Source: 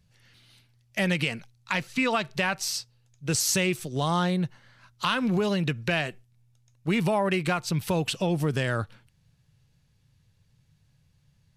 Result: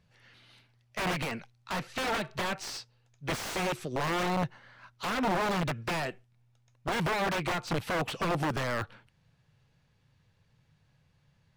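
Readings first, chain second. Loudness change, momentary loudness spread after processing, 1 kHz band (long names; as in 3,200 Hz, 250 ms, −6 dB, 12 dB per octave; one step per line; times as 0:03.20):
−5.0 dB, 9 LU, −1.0 dB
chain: wrap-around overflow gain 21.5 dB
mid-hump overdrive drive 13 dB, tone 1,200 Hz, clips at −21.5 dBFS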